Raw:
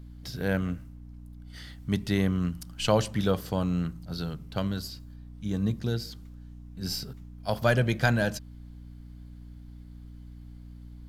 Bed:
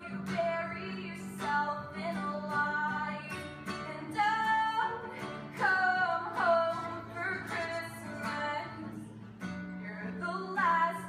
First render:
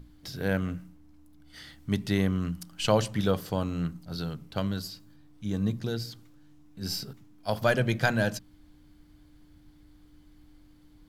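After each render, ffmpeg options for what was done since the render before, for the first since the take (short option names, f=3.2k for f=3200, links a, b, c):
-af "bandreject=f=60:t=h:w=6,bandreject=f=120:t=h:w=6,bandreject=f=180:t=h:w=6,bandreject=f=240:t=h:w=6"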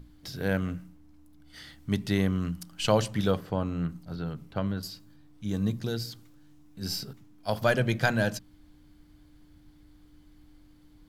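-filter_complex "[0:a]asettb=1/sr,asplit=3[a][b][c];[a]atrim=end=3.364[d];[b]atrim=start=3.36:end=4.83,asetpts=PTS-STARTPTS,afade=t=in:d=0.004:c=qsin,afade=t=out:st=1.466:d=0.004:c=qsin,acrossover=split=2600[e][f];[f]acompressor=threshold=-59dB:ratio=4:attack=1:release=60[g];[e][g]amix=inputs=2:normalize=0[h];[c]atrim=start=4.826[i];[d][h]acrossfade=d=0.004:c1=hsin:c2=qsin[j];[j][i]acrossfade=d=0.004:c1=qsin:c2=hsin,asettb=1/sr,asplit=3[k][l][m];[k]atrim=end=5.484[n];[l]atrim=start=5.48:end=6.85,asetpts=PTS-STARTPTS,afade=t=in:d=0.004:c=qsin,afade=t=out:st=1.366:d=0.004:c=qsin,highshelf=f=5.9k:g=4[o];[m]atrim=start=6.846[p];[n][o]acrossfade=d=0.004:c1=hsin:c2=qsin[q];[q][p]acrossfade=d=0.004:c1=qsin:c2=hsin"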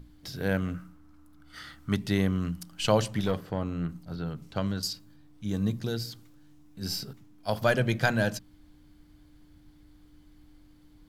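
-filter_complex "[0:a]asettb=1/sr,asplit=3[a][b][c];[a]atrim=end=0.744[d];[b]atrim=start=0.74:end=1.96,asetpts=PTS-STARTPTS,afade=t=in:d=0.004:c=qsin,afade=t=out:st=1.216:d=0.004:c=qsin,equalizer=f=1.3k:t=o:w=0.53:g=14[e];[c]atrim=start=1.956[f];[d][e]acrossfade=d=0.004:c1=hsin:c2=qsin[g];[g][f]acrossfade=d=0.004:c1=qsin:c2=hsin,asettb=1/sr,asplit=3[h][i][j];[h]atrim=end=3.194[k];[i]atrim=start=3.19:end=3.89,asetpts=PTS-STARTPTS,afade=t=in:d=0.004:c=qsin,afade=t=out:st=0.696:d=0.004:c=qsin,aeval=exprs='(tanh(10*val(0)+0.35)-tanh(0.35))/10':c=same[l];[j]atrim=start=3.886[m];[k][l]acrossfade=d=0.004:c1=hsin:c2=qsin[n];[n][m]acrossfade=d=0.004:c1=qsin:c2=hsin,asettb=1/sr,asplit=3[o][p][q];[o]atrim=end=4.424[r];[p]atrim=start=4.42:end=4.93,asetpts=PTS-STARTPTS,afade=t=in:d=0.004:c=qsin,afade=t=out:st=0.506:d=0.004:c=qsin,equalizer=f=6.3k:t=o:w=1.6:g=10.5[s];[q]atrim=start=4.926[t];[r][s]acrossfade=d=0.004:c1=hsin:c2=qsin[u];[u][t]acrossfade=d=0.004:c1=qsin:c2=hsin"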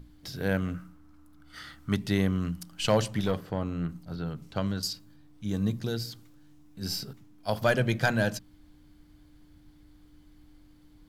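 -af "volume=13.5dB,asoftclip=hard,volume=-13.5dB"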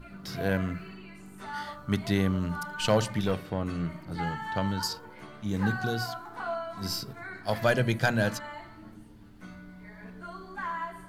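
-filter_complex "[1:a]volume=-6.5dB[a];[0:a][a]amix=inputs=2:normalize=0"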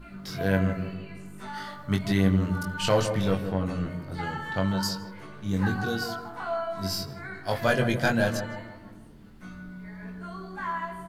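-filter_complex "[0:a]asplit=2[a][b];[b]adelay=21,volume=-4dB[c];[a][c]amix=inputs=2:normalize=0,asplit=2[d][e];[e]adelay=158,lowpass=f=890:p=1,volume=-7dB,asplit=2[f][g];[g]adelay=158,lowpass=f=890:p=1,volume=0.47,asplit=2[h][i];[i]adelay=158,lowpass=f=890:p=1,volume=0.47,asplit=2[j][k];[k]adelay=158,lowpass=f=890:p=1,volume=0.47,asplit=2[l][m];[m]adelay=158,lowpass=f=890:p=1,volume=0.47,asplit=2[n][o];[o]adelay=158,lowpass=f=890:p=1,volume=0.47[p];[d][f][h][j][l][n][p]amix=inputs=7:normalize=0"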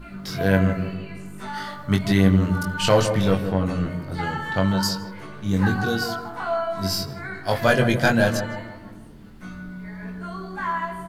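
-af "volume=5.5dB"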